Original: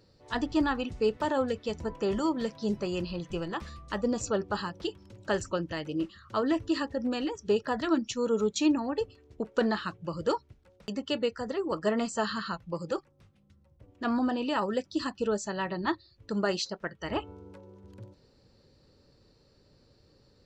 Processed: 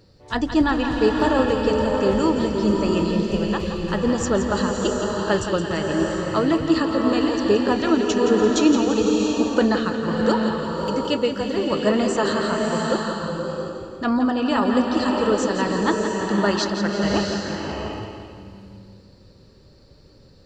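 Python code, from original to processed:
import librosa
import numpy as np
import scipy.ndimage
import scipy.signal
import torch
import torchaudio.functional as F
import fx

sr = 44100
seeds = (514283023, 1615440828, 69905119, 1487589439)

p1 = fx.low_shelf(x, sr, hz=180.0, db=4.0)
p2 = p1 + fx.echo_feedback(p1, sr, ms=169, feedback_pct=55, wet_db=-9.0, dry=0)
p3 = fx.rev_bloom(p2, sr, seeds[0], attack_ms=700, drr_db=1.5)
y = p3 * 10.0 ** (6.5 / 20.0)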